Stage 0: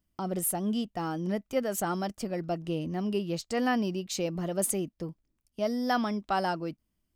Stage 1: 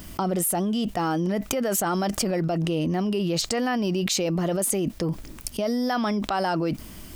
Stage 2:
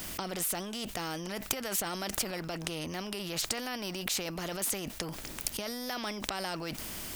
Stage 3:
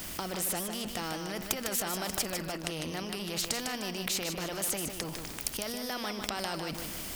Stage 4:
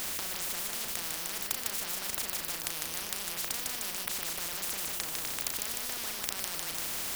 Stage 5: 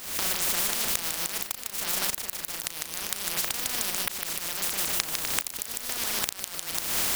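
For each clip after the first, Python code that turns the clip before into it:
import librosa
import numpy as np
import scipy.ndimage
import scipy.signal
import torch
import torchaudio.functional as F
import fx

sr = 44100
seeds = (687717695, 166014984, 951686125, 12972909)

y1 = fx.low_shelf(x, sr, hz=220.0, db=-4.5)
y1 = fx.env_flatten(y1, sr, amount_pct=100)
y2 = fx.peak_eq(y1, sr, hz=1100.0, db=-3.5, octaves=0.44)
y2 = fx.spectral_comp(y2, sr, ratio=2.0)
y3 = fx.echo_feedback(y2, sr, ms=152, feedback_pct=39, wet_db=-6.5)
y4 = fx.doubler(y3, sr, ms=35.0, db=-7.5)
y4 = fx.spectral_comp(y4, sr, ratio=10.0)
y4 = F.gain(torch.from_numpy(y4), 1.0).numpy()
y5 = fx.recorder_agc(y4, sr, target_db=-14.0, rise_db_per_s=52.0, max_gain_db=30)
y5 = np.sign(y5) * np.maximum(np.abs(y5) - 10.0 ** (-38.0 / 20.0), 0.0)
y5 = F.gain(torch.from_numpy(y5), -1.0).numpy()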